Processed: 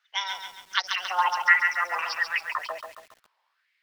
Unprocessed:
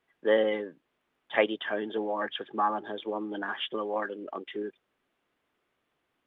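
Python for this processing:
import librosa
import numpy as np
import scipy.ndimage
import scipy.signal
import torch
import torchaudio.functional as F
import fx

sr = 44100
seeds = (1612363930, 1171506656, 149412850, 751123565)

y = fx.speed_glide(x, sr, from_pct=182, to_pct=145)
y = fx.filter_lfo_highpass(y, sr, shape='sine', hz=1.4, low_hz=900.0, high_hz=2100.0, q=5.0)
y = fx.echo_crushed(y, sr, ms=138, feedback_pct=55, bits=8, wet_db=-6)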